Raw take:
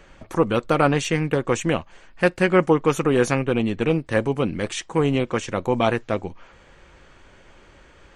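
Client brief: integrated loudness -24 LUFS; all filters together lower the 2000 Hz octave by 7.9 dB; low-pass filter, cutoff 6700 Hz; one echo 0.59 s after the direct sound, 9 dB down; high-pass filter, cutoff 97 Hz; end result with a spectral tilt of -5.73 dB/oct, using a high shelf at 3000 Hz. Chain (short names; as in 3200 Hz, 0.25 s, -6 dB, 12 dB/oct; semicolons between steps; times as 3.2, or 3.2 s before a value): HPF 97 Hz; LPF 6700 Hz; bell 2000 Hz -8 dB; high shelf 3000 Hz -7 dB; echo 0.59 s -9 dB; gain -1 dB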